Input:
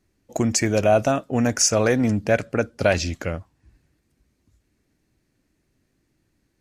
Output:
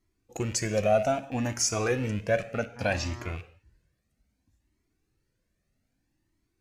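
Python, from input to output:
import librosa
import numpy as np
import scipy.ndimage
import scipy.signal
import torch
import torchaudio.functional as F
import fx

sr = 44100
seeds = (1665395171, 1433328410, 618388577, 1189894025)

y = fx.rattle_buzz(x, sr, strikes_db=-34.0, level_db=-25.0)
y = fx.dmg_buzz(y, sr, base_hz=120.0, harmonics=16, level_db=-36.0, tilt_db=-4, odd_only=False, at=(2.75, 3.31), fade=0.02)
y = fx.rev_gated(y, sr, seeds[0], gate_ms=240, shape='falling', drr_db=11.0)
y = fx.comb_cascade(y, sr, direction='rising', hz=0.63)
y = y * librosa.db_to_amplitude(-3.5)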